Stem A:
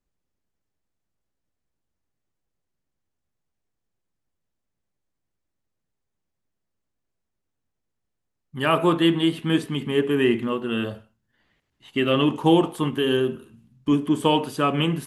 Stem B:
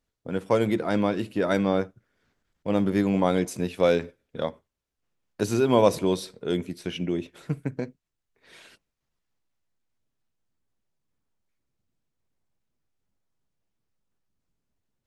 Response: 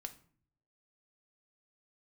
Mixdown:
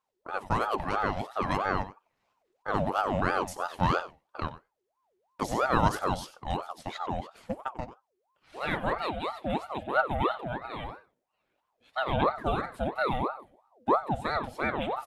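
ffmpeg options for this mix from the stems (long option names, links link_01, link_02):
-filter_complex "[0:a]aecho=1:1:7.2:0.65,aphaser=in_gain=1:out_gain=1:delay=2.6:decay=0.29:speed=1.8:type=sinusoidal,highshelf=frequency=2700:gain=-8,volume=-8dB,asplit=2[link_01][link_02];[link_02]volume=-16dB[link_03];[1:a]volume=-2.5dB,asplit=2[link_04][link_05];[link_05]volume=-15dB[link_06];[link_03][link_06]amix=inputs=2:normalize=0,aecho=0:1:93:1[link_07];[link_01][link_04][link_07]amix=inputs=3:normalize=0,aeval=exprs='val(0)*sin(2*PI*710*n/s+710*0.5/3*sin(2*PI*3*n/s))':channel_layout=same"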